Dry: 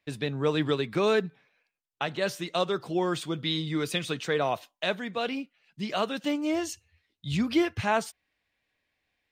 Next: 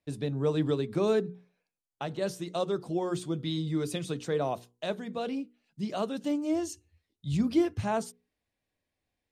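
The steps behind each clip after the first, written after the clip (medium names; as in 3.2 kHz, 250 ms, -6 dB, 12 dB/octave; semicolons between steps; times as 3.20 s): low-pass 12 kHz 24 dB/octave; peaking EQ 2.2 kHz -13.5 dB 2.6 oct; hum notches 60/120/180/240/300/360/420/480 Hz; trim +1.5 dB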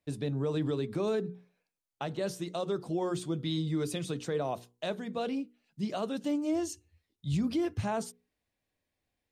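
peak limiter -23 dBFS, peak gain reduction 8 dB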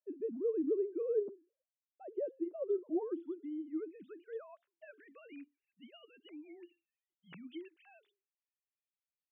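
formants replaced by sine waves; resonant low shelf 470 Hz +10.5 dB, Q 1.5; band-pass sweep 540 Hz -> 2.9 kHz, 2.58–6.02 s; trim -6 dB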